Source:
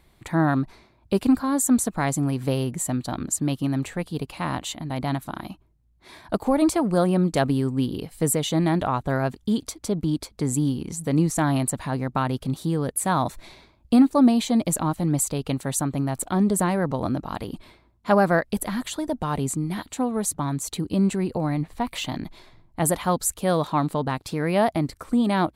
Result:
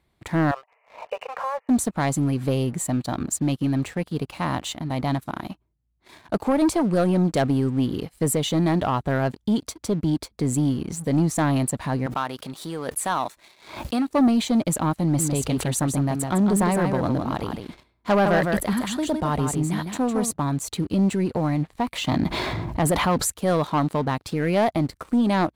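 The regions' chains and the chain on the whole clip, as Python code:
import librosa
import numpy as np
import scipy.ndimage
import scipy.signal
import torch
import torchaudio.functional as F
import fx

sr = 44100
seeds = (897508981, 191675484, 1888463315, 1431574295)

y = fx.chain(x, sr, fx.brickwall_bandpass(low_hz=430.0, high_hz=3000.0),
    fx.peak_eq(hz=1500.0, db=-10.5, octaves=0.23),
    fx.pre_swell(db_per_s=91.0), at=(0.51, 1.69))
y = fx.chain(y, sr, fx.highpass(hz=830.0, slope=6),
    fx.pre_swell(db_per_s=71.0), at=(12.06, 14.08))
y = fx.chain(y, sr, fx.echo_single(ms=158, db=-6.5),
    fx.sustainer(db_per_s=110.0), at=(15.03, 20.31))
y = fx.chain(y, sr, fx.highpass(hz=49.0, slope=12),
    fx.high_shelf(hz=4600.0, db=-7.5),
    fx.env_flatten(amount_pct=70), at=(22.07, 23.3))
y = scipy.signal.sosfilt(scipy.signal.butter(2, 42.0, 'highpass', fs=sr, output='sos'), y)
y = fx.high_shelf(y, sr, hz=6300.0, db=-5.5)
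y = fx.leveller(y, sr, passes=2)
y = y * librosa.db_to_amplitude(-5.0)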